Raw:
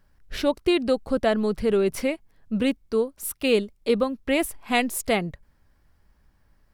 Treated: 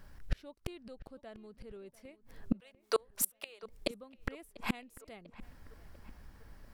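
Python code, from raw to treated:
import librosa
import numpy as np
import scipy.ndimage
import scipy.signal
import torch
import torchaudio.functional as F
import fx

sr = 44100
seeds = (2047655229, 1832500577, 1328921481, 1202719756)

y = fx.highpass(x, sr, hz=580.0, slope=24, at=(2.6, 3.63))
y = fx.gate_flip(y, sr, shuts_db=-24.0, range_db=-36)
y = fx.echo_filtered(y, sr, ms=694, feedback_pct=58, hz=2800.0, wet_db=-18.5)
y = F.gain(torch.from_numpy(y), 7.5).numpy()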